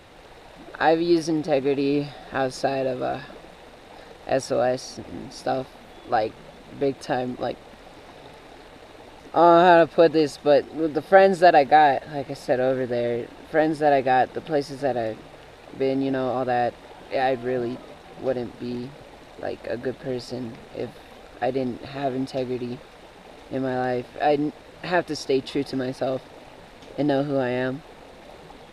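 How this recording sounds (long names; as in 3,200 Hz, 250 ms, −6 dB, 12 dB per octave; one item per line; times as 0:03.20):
background noise floor −47 dBFS
spectral slope −4.0 dB per octave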